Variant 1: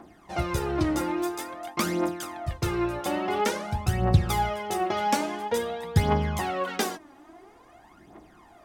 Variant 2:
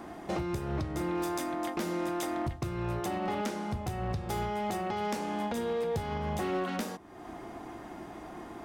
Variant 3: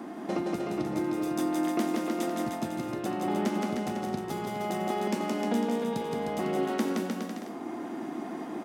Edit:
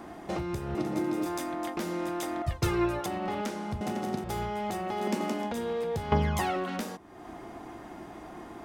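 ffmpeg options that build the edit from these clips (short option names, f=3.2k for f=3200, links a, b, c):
-filter_complex "[2:a]asplit=3[a][b][c];[0:a]asplit=2[d][e];[1:a]asplit=6[f][g][h][i][j][k];[f]atrim=end=0.752[l];[a]atrim=start=0.748:end=1.262[m];[g]atrim=start=1.258:end=2.422[n];[d]atrim=start=2.418:end=3.062[o];[h]atrim=start=3.058:end=3.812[p];[b]atrim=start=3.808:end=4.242[q];[i]atrim=start=4.238:end=5.09[r];[c]atrim=start=4.85:end=5.52[s];[j]atrim=start=5.28:end=6.122[t];[e]atrim=start=6.118:end=6.562[u];[k]atrim=start=6.558[v];[l][m]acrossfade=d=0.004:c1=hsin:c2=hsin[w];[w][n]acrossfade=d=0.004:c1=hsin:c2=hsin[x];[x][o]acrossfade=d=0.004:c1=hsin:c2=hsin[y];[y][p]acrossfade=d=0.004:c1=hsin:c2=hsin[z];[z][q]acrossfade=d=0.004:c1=hsin:c2=hsin[aa];[aa][r]acrossfade=d=0.004:c1=hsin:c2=hsin[ab];[ab][s]acrossfade=d=0.24:c1=tri:c2=tri[ac];[ac][t]acrossfade=d=0.24:c1=tri:c2=tri[ad];[ad][u]acrossfade=d=0.004:c1=hsin:c2=hsin[ae];[ae][v]acrossfade=d=0.004:c1=hsin:c2=hsin"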